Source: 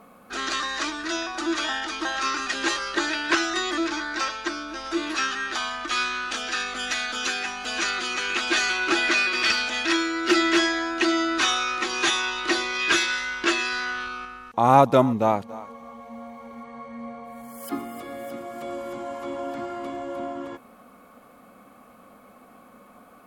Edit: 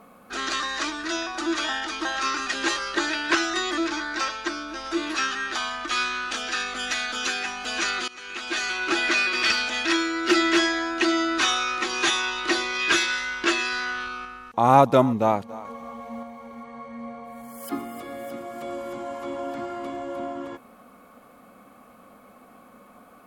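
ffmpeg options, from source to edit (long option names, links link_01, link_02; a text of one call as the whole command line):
ffmpeg -i in.wav -filter_complex "[0:a]asplit=4[link_01][link_02][link_03][link_04];[link_01]atrim=end=8.08,asetpts=PTS-STARTPTS,afade=type=out:start_time=8.076:duration=0.004:curve=hsin:silence=0.112202[link_05];[link_02]atrim=start=8.08:end=15.652,asetpts=PTS-STARTPTS,afade=type=in:duration=1.43:curve=qsin:silence=0.112202[link_06];[link_03]atrim=start=15.648:end=16.232,asetpts=PTS-STARTPTS,volume=4dB[link_07];[link_04]atrim=start=16.228[link_08];[link_05][link_06]concat=n=2:v=0:a=1[link_09];[link_09][link_07]acrossfade=duration=0.004:curve1=hsin:curve2=hsin[link_10];[link_10][link_08]acrossfade=duration=0.004:curve1=hsin:curve2=hsin" out.wav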